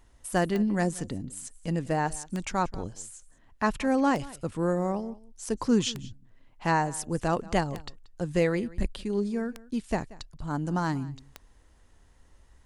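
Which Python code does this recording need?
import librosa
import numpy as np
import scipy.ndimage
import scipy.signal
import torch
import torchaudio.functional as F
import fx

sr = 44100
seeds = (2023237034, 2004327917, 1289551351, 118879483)

y = fx.fix_declip(x, sr, threshold_db=-13.5)
y = fx.fix_declick_ar(y, sr, threshold=10.0)
y = fx.fix_echo_inverse(y, sr, delay_ms=182, level_db=-20.5)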